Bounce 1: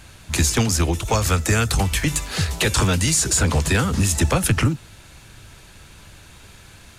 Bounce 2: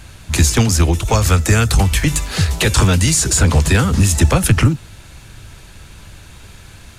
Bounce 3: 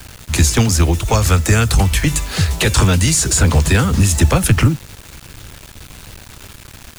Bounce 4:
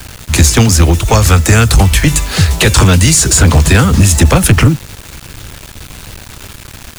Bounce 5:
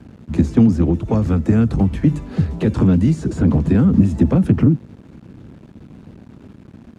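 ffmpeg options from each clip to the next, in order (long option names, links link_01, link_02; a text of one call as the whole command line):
ffmpeg -i in.wav -af "lowshelf=frequency=140:gain=5.5,volume=3.5dB" out.wav
ffmpeg -i in.wav -af "acrusher=bits=5:mix=0:aa=0.000001" out.wav
ffmpeg -i in.wav -af "asoftclip=type=hard:threshold=-8dB,volume=6.5dB" out.wav
ffmpeg -i in.wav -af "bandpass=frequency=230:width_type=q:width=2:csg=0,volume=1.5dB" out.wav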